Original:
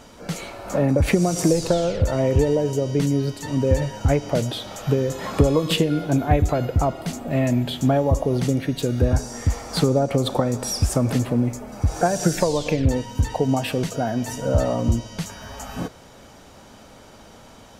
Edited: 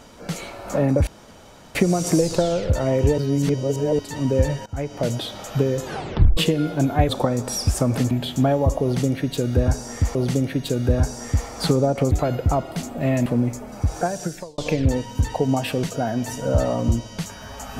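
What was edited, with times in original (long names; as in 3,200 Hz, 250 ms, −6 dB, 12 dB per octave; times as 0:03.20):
0:01.07: splice in room tone 0.68 s
0:02.50–0:03.31: reverse
0:03.98–0:04.46: fade in, from −18.5 dB
0:05.16: tape stop 0.53 s
0:06.41–0:07.56: swap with 0:10.24–0:11.26
0:08.28–0:09.60: repeat, 2 plays
0:11.78–0:12.58: fade out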